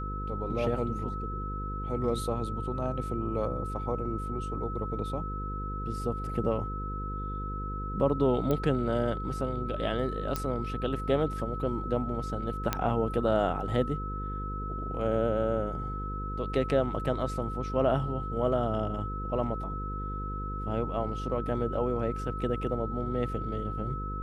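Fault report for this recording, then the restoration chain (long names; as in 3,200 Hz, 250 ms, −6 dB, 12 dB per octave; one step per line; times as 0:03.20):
mains buzz 50 Hz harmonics 10 −36 dBFS
whistle 1,300 Hz −37 dBFS
0:08.51: click −17 dBFS
0:10.36: click −15 dBFS
0:12.73: click −11 dBFS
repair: click removal
notch filter 1,300 Hz, Q 30
hum removal 50 Hz, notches 10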